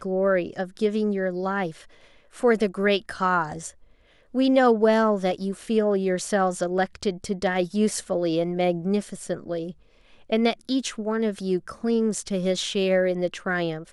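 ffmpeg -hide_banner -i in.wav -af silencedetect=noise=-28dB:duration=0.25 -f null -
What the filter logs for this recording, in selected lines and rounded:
silence_start: 1.69
silence_end: 2.43 | silence_duration: 0.75
silence_start: 3.68
silence_end: 4.35 | silence_duration: 0.67
silence_start: 9.70
silence_end: 10.32 | silence_duration: 0.62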